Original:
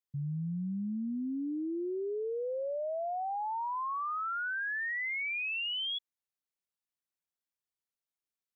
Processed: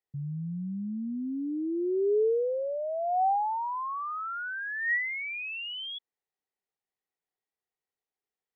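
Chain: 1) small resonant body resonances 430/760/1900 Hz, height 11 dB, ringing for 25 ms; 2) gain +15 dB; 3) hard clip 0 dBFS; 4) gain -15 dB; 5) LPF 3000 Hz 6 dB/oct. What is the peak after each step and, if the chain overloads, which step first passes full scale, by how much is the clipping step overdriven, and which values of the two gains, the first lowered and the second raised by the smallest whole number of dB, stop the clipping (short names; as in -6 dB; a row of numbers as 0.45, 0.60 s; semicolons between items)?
-20.5, -5.5, -5.5, -20.5, -21.0 dBFS; no overload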